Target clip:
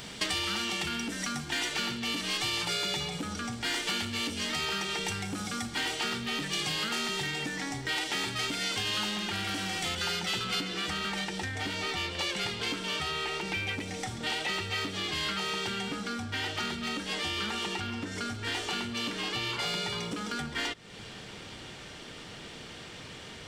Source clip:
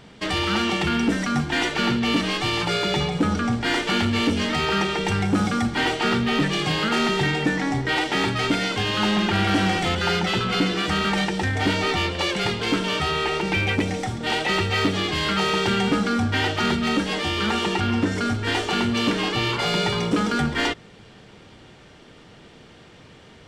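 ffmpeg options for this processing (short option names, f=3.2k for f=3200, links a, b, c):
-af "asetnsamples=n=441:p=0,asendcmd='10.61 highshelf g -10',highshelf=f=4.9k:g=-2,acompressor=threshold=-36dB:ratio=6,crystalizer=i=6:c=0"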